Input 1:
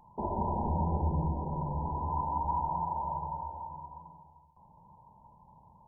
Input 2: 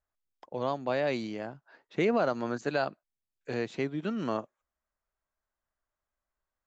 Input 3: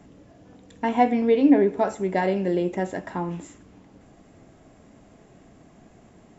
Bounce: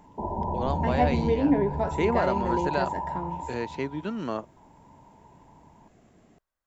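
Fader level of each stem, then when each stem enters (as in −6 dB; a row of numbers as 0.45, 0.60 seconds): +2.0, +0.5, −6.0 decibels; 0.00, 0.00, 0.00 seconds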